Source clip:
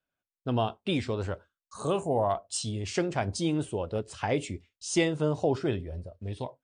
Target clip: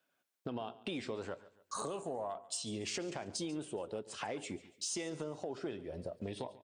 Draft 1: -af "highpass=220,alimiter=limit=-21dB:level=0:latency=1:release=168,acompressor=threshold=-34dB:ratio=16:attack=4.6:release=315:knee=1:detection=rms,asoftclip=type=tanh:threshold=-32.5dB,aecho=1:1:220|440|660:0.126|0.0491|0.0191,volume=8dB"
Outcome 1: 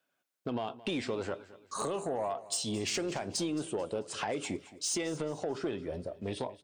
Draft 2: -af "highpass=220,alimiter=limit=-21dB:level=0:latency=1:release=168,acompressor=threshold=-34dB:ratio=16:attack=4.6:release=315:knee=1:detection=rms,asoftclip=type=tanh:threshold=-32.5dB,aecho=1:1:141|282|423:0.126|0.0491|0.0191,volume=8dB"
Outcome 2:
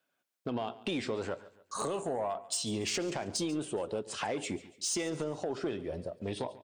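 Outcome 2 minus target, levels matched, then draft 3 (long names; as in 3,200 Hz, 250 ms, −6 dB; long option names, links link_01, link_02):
downward compressor: peak gain reduction −7 dB
-af "highpass=220,alimiter=limit=-21dB:level=0:latency=1:release=168,acompressor=threshold=-41.5dB:ratio=16:attack=4.6:release=315:knee=1:detection=rms,asoftclip=type=tanh:threshold=-32.5dB,aecho=1:1:141|282|423:0.126|0.0491|0.0191,volume=8dB"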